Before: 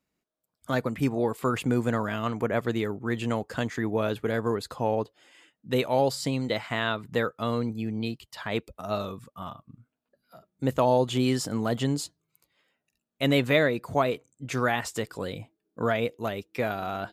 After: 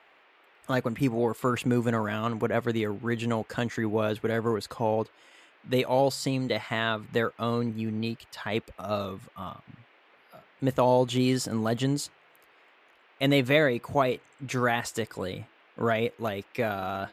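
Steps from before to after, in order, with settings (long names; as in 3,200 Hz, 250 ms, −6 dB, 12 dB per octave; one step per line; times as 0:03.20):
noise in a band 310–2,700 Hz −60 dBFS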